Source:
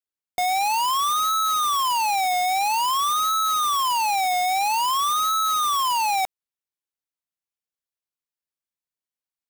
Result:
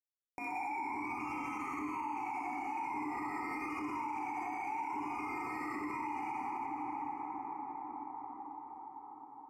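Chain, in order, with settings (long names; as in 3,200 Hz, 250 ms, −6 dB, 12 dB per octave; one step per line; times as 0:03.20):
running median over 41 samples
sample-and-hold swept by an LFO 11×, swing 60% 0.4 Hz
soft clipping −30.5 dBFS, distortion −75 dB
formant filter u
parametric band 190 Hz −11.5 dB 0.51 octaves
mains-hum notches 50/100 Hz
dense smooth reverb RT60 3.6 s, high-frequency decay 0.5×, DRR −6 dB
upward compression, threshold −29 dBFS
on a send: delay with a high-pass on its return 63 ms, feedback 76%, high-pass 1,800 Hz, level −7 dB
on the sum: dynamic equaliser 590 Hz, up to −6 dB, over −47 dBFS, Q 1.1
Butterworth band-reject 3,600 Hz, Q 1
brickwall limiter −34.5 dBFS, peak gain reduction 8.5 dB
level +3.5 dB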